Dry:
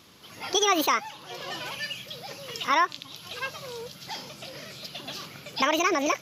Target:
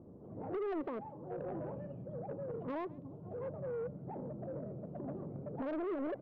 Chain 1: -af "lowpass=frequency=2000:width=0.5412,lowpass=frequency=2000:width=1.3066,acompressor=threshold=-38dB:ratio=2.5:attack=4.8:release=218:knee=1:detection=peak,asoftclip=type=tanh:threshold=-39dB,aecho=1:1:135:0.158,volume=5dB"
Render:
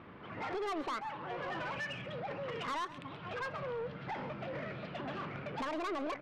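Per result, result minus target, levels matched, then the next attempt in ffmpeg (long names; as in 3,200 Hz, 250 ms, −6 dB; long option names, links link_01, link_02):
2,000 Hz band +13.0 dB; echo-to-direct +9 dB
-af "lowpass=frequency=590:width=0.5412,lowpass=frequency=590:width=1.3066,acompressor=threshold=-38dB:ratio=2.5:attack=4.8:release=218:knee=1:detection=peak,asoftclip=type=tanh:threshold=-39dB,aecho=1:1:135:0.158,volume=5dB"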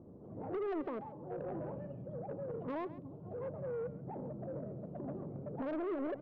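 echo-to-direct +9 dB
-af "lowpass=frequency=590:width=0.5412,lowpass=frequency=590:width=1.3066,acompressor=threshold=-38dB:ratio=2.5:attack=4.8:release=218:knee=1:detection=peak,asoftclip=type=tanh:threshold=-39dB,aecho=1:1:135:0.0562,volume=5dB"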